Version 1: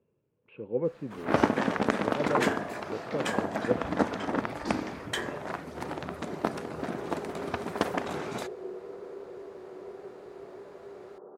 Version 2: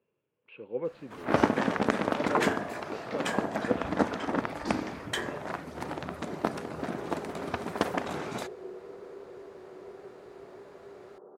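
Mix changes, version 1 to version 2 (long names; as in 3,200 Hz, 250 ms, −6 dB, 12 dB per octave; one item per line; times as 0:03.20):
speech: add spectral tilt +3.5 dB per octave
second sound −3.0 dB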